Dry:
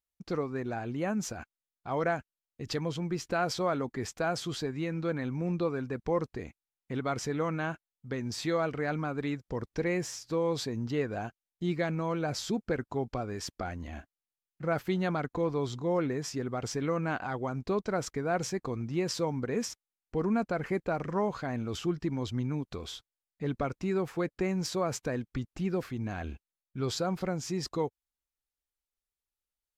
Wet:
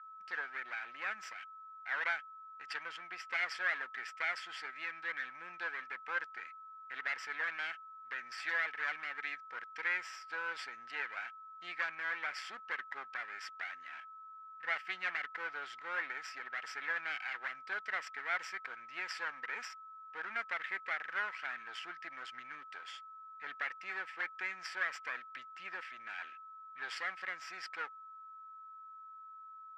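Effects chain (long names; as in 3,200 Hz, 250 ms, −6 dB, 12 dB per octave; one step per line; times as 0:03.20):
lower of the sound and its delayed copy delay 0.39 ms
steady tone 1,300 Hz −50 dBFS
four-pole ladder band-pass 1,900 Hz, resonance 55%
level +11.5 dB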